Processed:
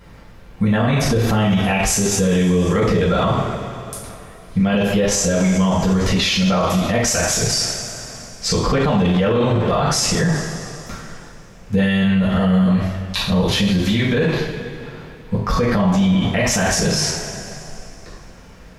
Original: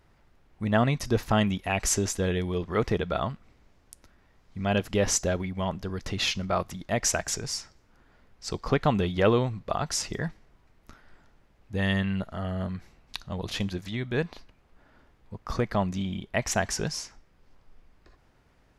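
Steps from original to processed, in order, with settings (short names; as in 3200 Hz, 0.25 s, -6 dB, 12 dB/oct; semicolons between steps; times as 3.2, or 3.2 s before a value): two-slope reverb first 0.55 s, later 2.8 s, from -18 dB, DRR -7 dB; maximiser +20.5 dB; gain -8.5 dB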